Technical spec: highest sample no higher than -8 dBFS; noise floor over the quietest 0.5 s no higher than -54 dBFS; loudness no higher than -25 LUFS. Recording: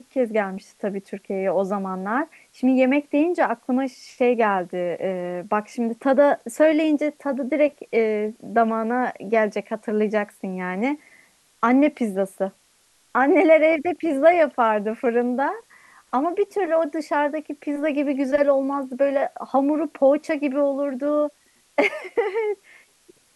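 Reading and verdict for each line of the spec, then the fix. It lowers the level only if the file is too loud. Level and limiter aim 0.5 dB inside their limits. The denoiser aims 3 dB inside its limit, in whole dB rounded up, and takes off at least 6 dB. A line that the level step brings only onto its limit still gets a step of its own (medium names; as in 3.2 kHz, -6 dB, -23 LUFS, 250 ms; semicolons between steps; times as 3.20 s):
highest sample -4.5 dBFS: fail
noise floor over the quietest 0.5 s -61 dBFS: pass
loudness -22.0 LUFS: fail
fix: trim -3.5 dB; peak limiter -8.5 dBFS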